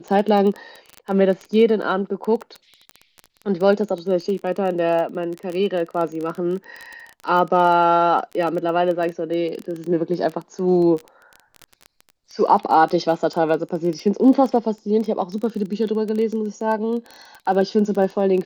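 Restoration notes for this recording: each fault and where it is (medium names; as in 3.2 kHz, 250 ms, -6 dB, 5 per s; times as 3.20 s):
crackle 18 per s -25 dBFS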